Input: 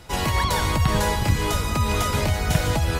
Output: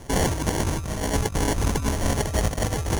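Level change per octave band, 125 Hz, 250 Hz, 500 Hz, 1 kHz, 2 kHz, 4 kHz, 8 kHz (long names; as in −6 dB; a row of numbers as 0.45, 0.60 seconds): −3.5, +0.5, 0.0, −5.0, −5.0, −5.5, +1.0 decibels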